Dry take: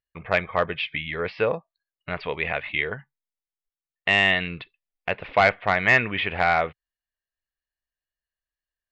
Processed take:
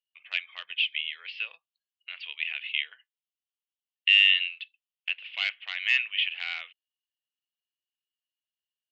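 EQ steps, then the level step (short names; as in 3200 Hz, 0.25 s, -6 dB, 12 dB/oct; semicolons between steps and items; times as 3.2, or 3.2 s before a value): resonant high-pass 2900 Hz, resonance Q 6.8; -9.0 dB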